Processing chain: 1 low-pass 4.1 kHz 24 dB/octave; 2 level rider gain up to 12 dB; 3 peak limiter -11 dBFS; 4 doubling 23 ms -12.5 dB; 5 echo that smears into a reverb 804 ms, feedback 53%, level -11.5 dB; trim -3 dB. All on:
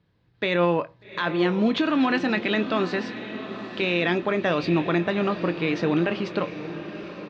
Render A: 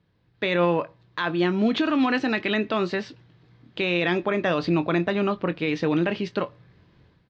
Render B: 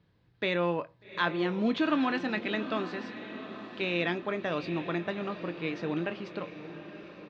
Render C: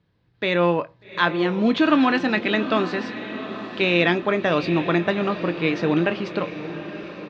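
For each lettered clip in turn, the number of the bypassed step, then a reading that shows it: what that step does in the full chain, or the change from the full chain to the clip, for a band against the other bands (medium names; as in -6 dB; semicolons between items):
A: 5, echo-to-direct -10.0 dB to none; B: 2, crest factor change +5.0 dB; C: 3, mean gain reduction 1.5 dB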